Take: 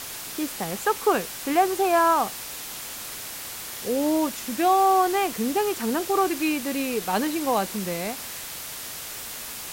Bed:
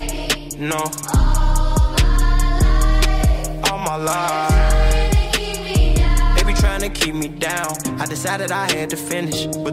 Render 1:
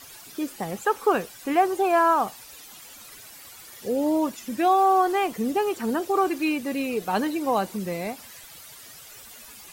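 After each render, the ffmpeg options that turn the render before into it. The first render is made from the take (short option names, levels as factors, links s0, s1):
-af "afftdn=nr=13:nf=-36"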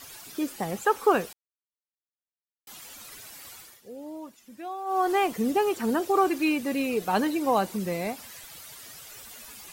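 -filter_complex "[0:a]asplit=5[s0][s1][s2][s3][s4];[s0]atrim=end=1.33,asetpts=PTS-STARTPTS,afade=t=out:st=1.326:d=0.004:c=hsin[s5];[s1]atrim=start=1.33:end=2.67,asetpts=PTS-STARTPTS,volume=0[s6];[s2]atrim=start=2.67:end=3.82,asetpts=PTS-STARTPTS,afade=t=in:d=0.004:c=hsin,afade=t=out:st=0.87:d=0.28:silence=0.149624[s7];[s3]atrim=start=3.82:end=4.85,asetpts=PTS-STARTPTS,volume=0.15[s8];[s4]atrim=start=4.85,asetpts=PTS-STARTPTS,afade=t=in:d=0.28:silence=0.149624[s9];[s5][s6][s7][s8][s9]concat=n=5:v=0:a=1"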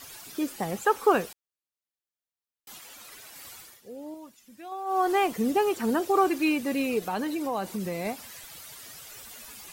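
-filter_complex "[0:a]asettb=1/sr,asplit=3[s0][s1][s2];[s0]atrim=end=2.784[s3];[s1]atrim=start=2.78:end=3.36,asetpts=PTS-STARTPTS,afade=t=in:d=0.004:c=qsin,afade=t=out:st=0.576:d=0.004:c=qsin,bass=f=250:g=-7,treble=f=4000:g=-3[s4];[s2]atrim=start=3.356[s5];[s3][s4]acrossfade=d=0.004:c1=hsin:c2=qsin[s6];[s6][s5]acrossfade=d=0.004:c1=qsin:c2=hsin,asettb=1/sr,asplit=3[s7][s8][s9];[s7]atrim=end=4.144[s10];[s8]atrim=start=4.14:end=4.72,asetpts=PTS-STARTPTS,afade=t=in:d=0.004:c=qsin,afade=t=out:st=0.576:d=0.004:c=qsin,equalizer=f=530:w=0.32:g=-5.5[s11];[s9]atrim=start=4.716[s12];[s10][s11]acrossfade=d=0.004:c1=hsin:c2=qsin[s13];[s13][s12]acrossfade=d=0.004:c1=qsin:c2=hsin,asplit=3[s14][s15][s16];[s14]afade=t=out:st=6.99:d=0.02[s17];[s15]acompressor=threshold=0.0398:ratio=2.5:attack=3.2:release=140:knee=1:detection=peak,afade=t=in:st=6.99:d=0.02,afade=t=out:st=8.04:d=0.02[s18];[s16]afade=t=in:st=8.04:d=0.02[s19];[s17][s18][s19]amix=inputs=3:normalize=0"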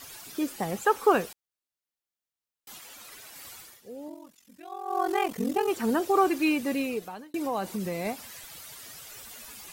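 -filter_complex "[0:a]asettb=1/sr,asplit=3[s0][s1][s2];[s0]atrim=end=4.084[s3];[s1]atrim=start=4.08:end=5.69,asetpts=PTS-STARTPTS,afade=t=in:d=0.004:c=qsin,afade=t=out:st=1.606:d=0.004:c=qsin,aeval=exprs='val(0)*sin(2*PI*22*n/s)':c=same[s4];[s2]atrim=start=5.686[s5];[s3][s4]acrossfade=d=0.004:c1=hsin:c2=qsin[s6];[s6][s5]acrossfade=d=0.004:c1=qsin:c2=hsin,asplit=2[s7][s8];[s7]atrim=end=7.34,asetpts=PTS-STARTPTS,afade=t=out:st=6.7:d=0.64[s9];[s8]atrim=start=7.34,asetpts=PTS-STARTPTS,afade=t=in:d=0.004:c=hsin[s10];[s9][s10]concat=n=2:v=0:a=1"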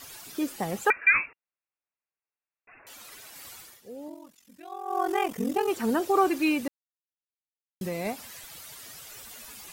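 -filter_complex "[0:a]asettb=1/sr,asplit=3[s0][s1][s2];[s0]atrim=end=0.904[s3];[s1]atrim=start=0.9:end=2.87,asetpts=PTS-STARTPTS,afade=t=in:d=0.004:c=qsin,afade=t=out:st=1.966:d=0.004:c=qsin,lowpass=f=2400:t=q:w=0.5098,lowpass=f=2400:t=q:w=0.6013,lowpass=f=2400:t=q:w=0.9,lowpass=f=2400:t=q:w=2.563,afreqshift=-2800[s4];[s2]atrim=start=2.866[s5];[s3][s4]acrossfade=d=0.004:c1=hsin:c2=qsin[s6];[s6][s5]acrossfade=d=0.004:c1=qsin:c2=hsin,asettb=1/sr,asplit=3[s7][s8][s9];[s7]atrim=end=4.754[s10];[s8]atrim=start=4.75:end=5.51,asetpts=PTS-STARTPTS,afade=t=in:d=0.004:c=qsin,afade=t=out:st=0.756:d=0.004:c=qsin,bandreject=f=4200:w=6.4[s11];[s9]atrim=start=5.506[s12];[s10][s11]acrossfade=d=0.004:c1=hsin:c2=qsin[s13];[s13][s12]acrossfade=d=0.004:c1=qsin:c2=hsin,asplit=3[s14][s15][s16];[s14]atrim=end=6.68,asetpts=PTS-STARTPTS,afade=t=out:st=6.676:d=0.004:c=hsin[s17];[s15]atrim=start=6.68:end=7.81,asetpts=PTS-STARTPTS,volume=0[s18];[s16]atrim=start=7.81,asetpts=PTS-STARTPTS,afade=t=in:d=0.004:c=hsin[s19];[s17][s18][s19]concat=n=3:v=0:a=1"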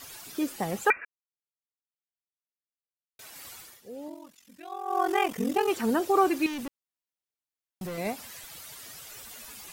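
-filter_complex "[0:a]asettb=1/sr,asplit=3[s0][s1][s2];[s0]atrim=end=3.934[s3];[s1]atrim=start=3.93:end=5.81,asetpts=PTS-STARTPTS,afade=t=in:d=0.004:c=qsin,afade=t=out:st=1.876:d=0.004:c=qsin,equalizer=f=2600:w=0.47:g=3.5[s4];[s2]atrim=start=5.806[s5];[s3][s4]acrossfade=d=0.004:c1=hsin:c2=qsin[s6];[s6][s5]acrossfade=d=0.004:c1=qsin:c2=hsin,asettb=1/sr,asplit=3[s7][s8][s9];[s7]atrim=end=6.464[s10];[s8]atrim=start=6.46:end=7.98,asetpts=PTS-STARTPTS,afade=t=in:d=0.004:c=qsin,afade=t=out:st=1.516:d=0.004:c=qsin,asoftclip=type=hard:threshold=0.0224[s11];[s9]atrim=start=7.976[s12];[s10][s11]acrossfade=d=0.004:c1=hsin:c2=qsin[s13];[s13][s12]acrossfade=d=0.004:c1=qsin:c2=hsin,asplit=3[s14][s15][s16];[s14]atrim=end=1.05,asetpts=PTS-STARTPTS,afade=t=out:st=1.046:d=0.004:c=hsin[s17];[s15]atrim=start=1.05:end=3.19,asetpts=PTS-STARTPTS,volume=0[s18];[s16]atrim=start=3.19,asetpts=PTS-STARTPTS,afade=t=in:d=0.004:c=hsin[s19];[s17][s18][s19]concat=n=3:v=0:a=1"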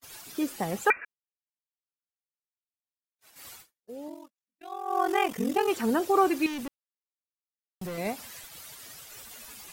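-af "agate=range=0.00794:threshold=0.00562:ratio=16:detection=peak"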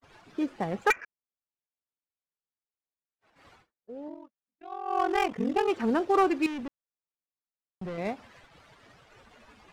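-af "adynamicsmooth=sensitivity=4:basefreq=1800,aeval=exprs='clip(val(0),-1,0.133)':c=same"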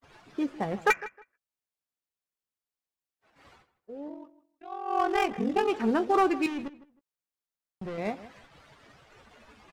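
-filter_complex "[0:a]asplit=2[s0][s1];[s1]adelay=14,volume=0.266[s2];[s0][s2]amix=inputs=2:normalize=0,asplit=2[s3][s4];[s4]adelay=157,lowpass=f=2500:p=1,volume=0.15,asplit=2[s5][s6];[s6]adelay=157,lowpass=f=2500:p=1,volume=0.22[s7];[s3][s5][s7]amix=inputs=3:normalize=0"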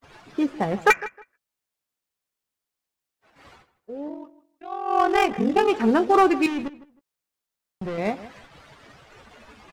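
-af "volume=2.11"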